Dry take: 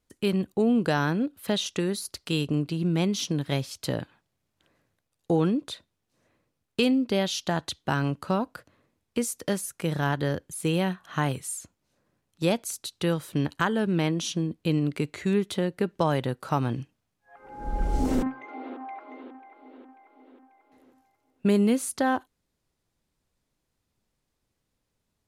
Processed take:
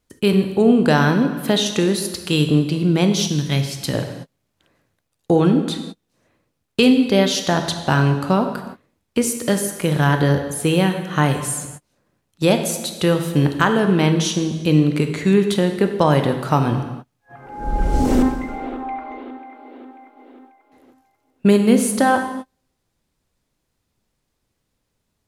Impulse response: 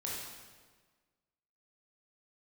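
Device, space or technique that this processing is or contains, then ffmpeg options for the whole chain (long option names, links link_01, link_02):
keyed gated reverb: -filter_complex "[0:a]asplit=3[link_01][link_02][link_03];[1:a]atrim=start_sample=2205[link_04];[link_02][link_04]afir=irnorm=-1:irlink=0[link_05];[link_03]apad=whole_len=1114804[link_06];[link_05][link_06]sidechaingate=range=-39dB:threshold=-57dB:ratio=16:detection=peak,volume=-4dB[link_07];[link_01][link_07]amix=inputs=2:normalize=0,asettb=1/sr,asplit=3[link_08][link_09][link_10];[link_08]atrim=end=3.274[link_11];[link_09]atrim=start=3.27:end=3.94,asetpts=PTS-STARTPTS,afade=type=in:duration=0.004:curve=qsin,afade=type=out:start_time=0.666:duration=0.004:curve=qsin,equalizer=frequency=590:width_type=o:width=2.1:gain=-8[link_12];[link_10]atrim=start=3.936[link_13];[link_11][link_12]acrossfade=duration=0.004:curve1=hsin:curve2=qsin[link_14];[link_14][link_13]acrossfade=duration=0.004:curve1=qsin:curve2=hsin,volume=5.5dB"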